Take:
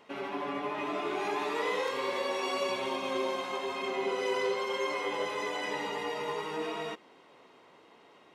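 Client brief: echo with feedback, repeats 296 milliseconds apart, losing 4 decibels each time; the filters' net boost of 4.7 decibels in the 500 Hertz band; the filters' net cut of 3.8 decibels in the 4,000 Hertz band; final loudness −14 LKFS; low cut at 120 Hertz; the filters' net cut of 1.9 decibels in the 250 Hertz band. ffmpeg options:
ffmpeg -i in.wav -af "highpass=120,equalizer=frequency=250:width_type=o:gain=-8.5,equalizer=frequency=500:width_type=o:gain=8,equalizer=frequency=4000:width_type=o:gain=-5.5,aecho=1:1:296|592|888|1184|1480|1776|2072|2368|2664:0.631|0.398|0.25|0.158|0.0994|0.0626|0.0394|0.0249|0.0157,volume=14.5dB" out.wav

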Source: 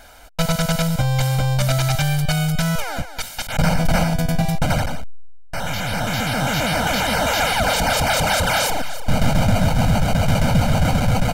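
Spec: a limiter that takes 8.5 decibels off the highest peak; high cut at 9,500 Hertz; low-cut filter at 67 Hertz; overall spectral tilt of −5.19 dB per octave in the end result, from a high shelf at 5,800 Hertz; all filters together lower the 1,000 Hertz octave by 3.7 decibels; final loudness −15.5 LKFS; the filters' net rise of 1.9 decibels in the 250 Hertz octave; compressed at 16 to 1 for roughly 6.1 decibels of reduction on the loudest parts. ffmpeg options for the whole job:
ffmpeg -i in.wav -af "highpass=67,lowpass=9500,equalizer=frequency=250:width_type=o:gain=3.5,equalizer=frequency=1000:width_type=o:gain=-5.5,highshelf=frequency=5800:gain=-5.5,acompressor=threshold=-19dB:ratio=16,volume=12dB,alimiter=limit=-7.5dB:level=0:latency=1" out.wav

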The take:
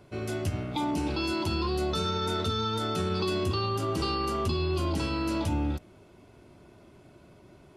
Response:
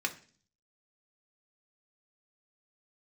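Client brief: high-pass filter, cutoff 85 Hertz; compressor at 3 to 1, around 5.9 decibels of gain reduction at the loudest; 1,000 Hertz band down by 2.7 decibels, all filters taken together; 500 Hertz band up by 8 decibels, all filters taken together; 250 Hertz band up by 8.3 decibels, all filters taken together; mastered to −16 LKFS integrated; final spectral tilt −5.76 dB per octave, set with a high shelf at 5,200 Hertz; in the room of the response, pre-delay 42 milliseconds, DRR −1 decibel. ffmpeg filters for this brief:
-filter_complex "[0:a]highpass=85,equalizer=frequency=250:width_type=o:gain=8.5,equalizer=frequency=500:width_type=o:gain=8.5,equalizer=frequency=1000:width_type=o:gain=-6,highshelf=frequency=5200:gain=-3.5,acompressor=threshold=-27dB:ratio=3,asplit=2[link_01][link_02];[1:a]atrim=start_sample=2205,adelay=42[link_03];[link_02][link_03]afir=irnorm=-1:irlink=0,volume=-4.5dB[link_04];[link_01][link_04]amix=inputs=2:normalize=0,volume=11dB"

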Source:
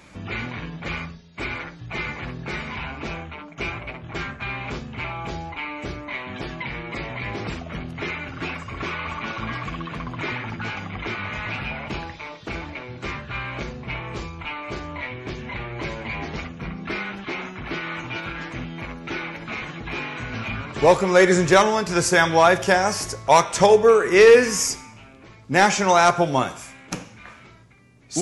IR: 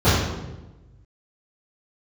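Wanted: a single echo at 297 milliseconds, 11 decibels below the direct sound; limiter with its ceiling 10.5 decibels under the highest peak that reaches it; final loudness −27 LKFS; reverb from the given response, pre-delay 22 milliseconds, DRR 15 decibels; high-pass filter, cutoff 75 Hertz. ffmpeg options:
-filter_complex "[0:a]highpass=75,alimiter=limit=-14.5dB:level=0:latency=1,aecho=1:1:297:0.282,asplit=2[link_01][link_02];[1:a]atrim=start_sample=2205,adelay=22[link_03];[link_02][link_03]afir=irnorm=-1:irlink=0,volume=-37.5dB[link_04];[link_01][link_04]amix=inputs=2:normalize=0,volume=0.5dB"

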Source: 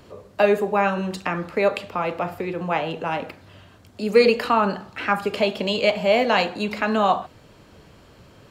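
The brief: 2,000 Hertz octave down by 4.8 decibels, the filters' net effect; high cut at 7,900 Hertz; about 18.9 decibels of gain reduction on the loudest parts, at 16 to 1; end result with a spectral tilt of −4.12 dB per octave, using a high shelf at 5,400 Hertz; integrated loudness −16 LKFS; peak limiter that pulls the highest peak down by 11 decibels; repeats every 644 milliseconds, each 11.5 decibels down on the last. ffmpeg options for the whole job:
ffmpeg -i in.wav -af "lowpass=7900,equalizer=frequency=2000:width_type=o:gain=-8,highshelf=frequency=5400:gain=8.5,acompressor=threshold=-29dB:ratio=16,alimiter=level_in=2dB:limit=-24dB:level=0:latency=1,volume=-2dB,aecho=1:1:644|1288|1932:0.266|0.0718|0.0194,volume=20.5dB" out.wav

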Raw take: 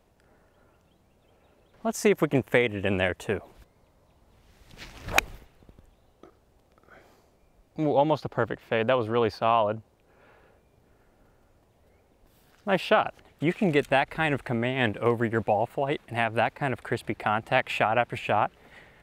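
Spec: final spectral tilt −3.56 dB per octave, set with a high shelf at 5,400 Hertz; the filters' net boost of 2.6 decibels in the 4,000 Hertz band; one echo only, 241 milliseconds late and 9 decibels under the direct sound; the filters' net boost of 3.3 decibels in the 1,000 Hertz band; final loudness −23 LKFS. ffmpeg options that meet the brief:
ffmpeg -i in.wav -af "equalizer=frequency=1000:width_type=o:gain=4.5,equalizer=frequency=4000:width_type=o:gain=4.5,highshelf=frequency=5400:gain=-3,aecho=1:1:241:0.355,volume=1.5dB" out.wav

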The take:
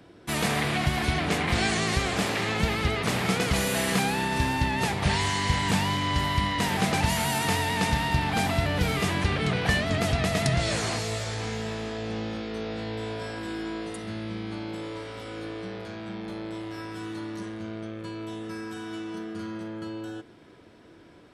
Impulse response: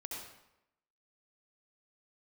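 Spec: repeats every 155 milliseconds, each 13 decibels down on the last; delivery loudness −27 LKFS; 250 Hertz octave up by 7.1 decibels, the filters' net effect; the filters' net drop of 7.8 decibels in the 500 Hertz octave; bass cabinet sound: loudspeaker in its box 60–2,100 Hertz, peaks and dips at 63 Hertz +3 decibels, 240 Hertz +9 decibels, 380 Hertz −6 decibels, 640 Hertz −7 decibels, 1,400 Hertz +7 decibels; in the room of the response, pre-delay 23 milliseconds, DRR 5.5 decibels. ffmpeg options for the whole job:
-filter_complex "[0:a]equalizer=frequency=250:width_type=o:gain=6.5,equalizer=frequency=500:width_type=o:gain=-8,aecho=1:1:155|310|465:0.224|0.0493|0.0108,asplit=2[link_01][link_02];[1:a]atrim=start_sample=2205,adelay=23[link_03];[link_02][link_03]afir=irnorm=-1:irlink=0,volume=-4.5dB[link_04];[link_01][link_04]amix=inputs=2:normalize=0,highpass=frequency=60:width=0.5412,highpass=frequency=60:width=1.3066,equalizer=frequency=63:width_type=q:width=4:gain=3,equalizer=frequency=240:width_type=q:width=4:gain=9,equalizer=frequency=380:width_type=q:width=4:gain=-6,equalizer=frequency=640:width_type=q:width=4:gain=-7,equalizer=frequency=1400:width_type=q:width=4:gain=7,lowpass=frequency=2100:width=0.5412,lowpass=frequency=2100:width=1.3066,volume=-2dB"

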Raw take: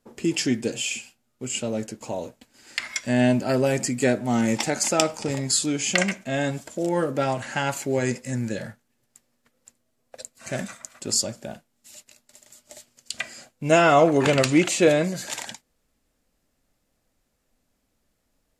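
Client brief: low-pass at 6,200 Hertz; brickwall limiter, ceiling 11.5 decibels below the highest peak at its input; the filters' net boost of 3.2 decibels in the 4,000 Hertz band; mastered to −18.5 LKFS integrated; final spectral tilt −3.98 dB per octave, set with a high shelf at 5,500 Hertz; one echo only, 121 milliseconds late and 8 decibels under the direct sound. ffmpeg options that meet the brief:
ffmpeg -i in.wav -af "lowpass=6200,equalizer=frequency=4000:width_type=o:gain=3,highshelf=frequency=5500:gain=5,alimiter=limit=-11.5dB:level=0:latency=1,aecho=1:1:121:0.398,volume=6dB" out.wav

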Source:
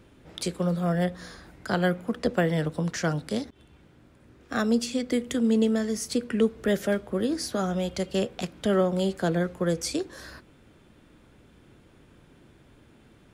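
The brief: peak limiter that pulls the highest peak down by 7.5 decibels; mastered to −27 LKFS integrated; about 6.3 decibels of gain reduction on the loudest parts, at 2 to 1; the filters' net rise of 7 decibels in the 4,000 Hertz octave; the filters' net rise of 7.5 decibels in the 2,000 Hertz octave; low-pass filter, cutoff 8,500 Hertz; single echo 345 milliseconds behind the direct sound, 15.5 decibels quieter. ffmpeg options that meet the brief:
ffmpeg -i in.wav -af "lowpass=8500,equalizer=frequency=2000:width_type=o:gain=8.5,equalizer=frequency=4000:width_type=o:gain=6.5,acompressor=threshold=-29dB:ratio=2,alimiter=limit=-20.5dB:level=0:latency=1,aecho=1:1:345:0.168,volume=4.5dB" out.wav

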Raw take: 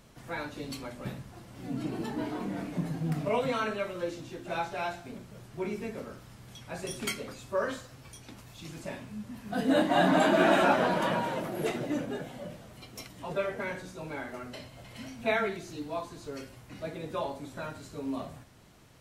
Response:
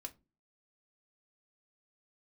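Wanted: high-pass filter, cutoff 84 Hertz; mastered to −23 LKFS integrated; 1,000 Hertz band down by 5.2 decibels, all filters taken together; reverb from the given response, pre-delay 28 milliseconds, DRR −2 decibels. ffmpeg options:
-filter_complex "[0:a]highpass=84,equalizer=frequency=1000:width_type=o:gain=-7.5,asplit=2[link_01][link_02];[1:a]atrim=start_sample=2205,adelay=28[link_03];[link_02][link_03]afir=irnorm=-1:irlink=0,volume=6dB[link_04];[link_01][link_04]amix=inputs=2:normalize=0,volume=6.5dB"

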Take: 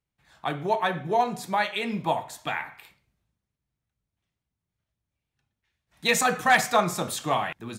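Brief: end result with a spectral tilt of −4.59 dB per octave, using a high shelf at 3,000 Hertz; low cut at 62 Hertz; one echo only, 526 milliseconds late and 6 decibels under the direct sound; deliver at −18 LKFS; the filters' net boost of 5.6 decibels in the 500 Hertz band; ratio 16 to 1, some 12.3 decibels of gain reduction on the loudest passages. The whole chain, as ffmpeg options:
ffmpeg -i in.wav -af "highpass=62,equalizer=frequency=500:width_type=o:gain=7.5,highshelf=frequency=3000:gain=-6,acompressor=threshold=-25dB:ratio=16,aecho=1:1:526:0.501,volume=13dB" out.wav

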